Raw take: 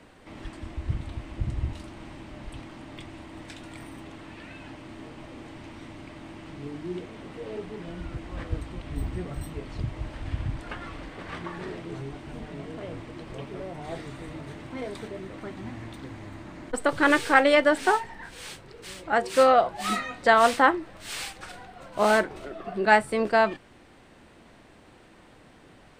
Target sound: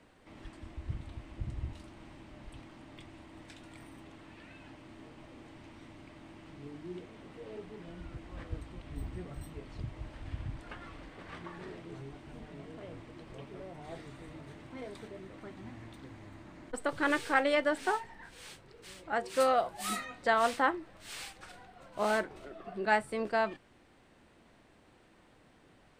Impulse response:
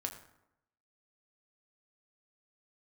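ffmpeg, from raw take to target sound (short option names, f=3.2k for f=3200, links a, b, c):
-filter_complex "[0:a]asettb=1/sr,asplit=3[a][b][c];[a]atrim=end=19.404[d];[b]atrim=start=19.4:end=20.05,asetpts=PTS-STARTPTS,afade=t=in:d=0.004:c=qsin,afade=t=out:st=0.646:d=0.004:c=qsin,equalizer=f=12k:w=0.58:g=12.5[e];[c]atrim=start=20.046[f];[d][e]acrossfade=d=0.004:c1=hsin:c2=qsin[g];[g][f]acrossfade=d=0.004:c1=qsin:c2=hsin,volume=-9dB"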